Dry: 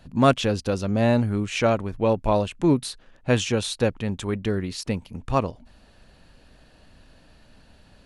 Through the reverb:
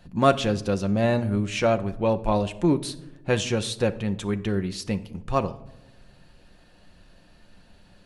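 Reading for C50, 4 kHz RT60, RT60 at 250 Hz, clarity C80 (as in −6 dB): 16.5 dB, 0.45 s, 1.4 s, 20.0 dB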